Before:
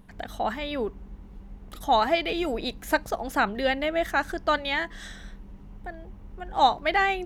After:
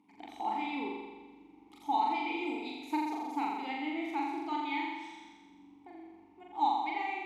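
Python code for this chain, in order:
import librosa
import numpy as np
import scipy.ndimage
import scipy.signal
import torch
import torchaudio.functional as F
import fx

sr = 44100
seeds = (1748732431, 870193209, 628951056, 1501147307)

y = scipy.signal.sosfilt(scipy.signal.butter(2, 53.0, 'highpass', fs=sr, output='sos'), x)
y = fx.bass_treble(y, sr, bass_db=-12, treble_db=12)
y = fx.rider(y, sr, range_db=4, speed_s=0.5)
y = fx.vowel_filter(y, sr, vowel='u')
y = fx.room_flutter(y, sr, wall_m=7.3, rt60_s=1.3)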